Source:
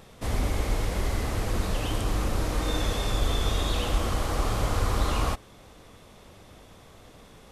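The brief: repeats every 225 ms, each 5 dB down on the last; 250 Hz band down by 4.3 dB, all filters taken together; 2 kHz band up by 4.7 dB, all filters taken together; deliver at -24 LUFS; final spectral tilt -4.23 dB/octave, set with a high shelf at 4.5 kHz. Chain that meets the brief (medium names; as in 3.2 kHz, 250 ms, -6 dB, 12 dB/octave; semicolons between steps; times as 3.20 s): peaking EQ 250 Hz -6 dB; peaking EQ 2 kHz +5 dB; treble shelf 4.5 kHz +5 dB; feedback delay 225 ms, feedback 56%, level -5 dB; trim +2 dB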